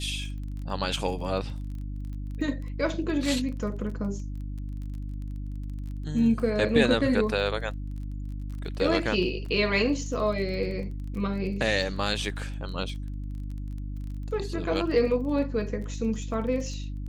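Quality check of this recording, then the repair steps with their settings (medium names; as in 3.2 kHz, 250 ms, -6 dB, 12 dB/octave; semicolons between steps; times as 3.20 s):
crackle 23 per s -37 dBFS
hum 50 Hz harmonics 6 -34 dBFS
9.46 s: dropout 2.8 ms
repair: de-click; de-hum 50 Hz, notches 6; interpolate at 9.46 s, 2.8 ms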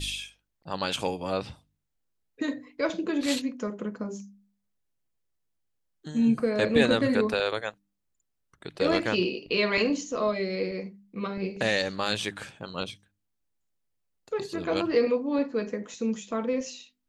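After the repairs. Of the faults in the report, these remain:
nothing left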